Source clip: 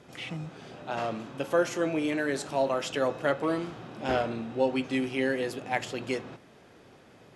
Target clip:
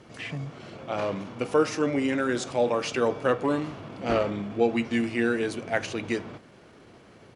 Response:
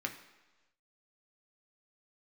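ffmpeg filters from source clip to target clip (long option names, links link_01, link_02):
-af "asetrate=39289,aresample=44100,atempo=1.12246,volume=3dB"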